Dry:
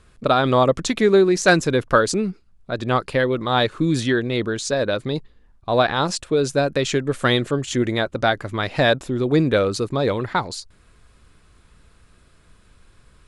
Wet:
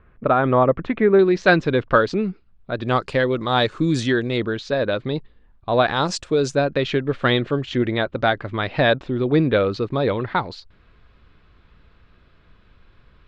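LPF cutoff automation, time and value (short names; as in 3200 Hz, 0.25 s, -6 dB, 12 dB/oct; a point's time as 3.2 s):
LPF 24 dB/oct
2200 Hz
from 1.19 s 3800 Hz
from 2.84 s 7500 Hz
from 4.38 s 3900 Hz
from 5.88 s 7200 Hz
from 6.55 s 3900 Hz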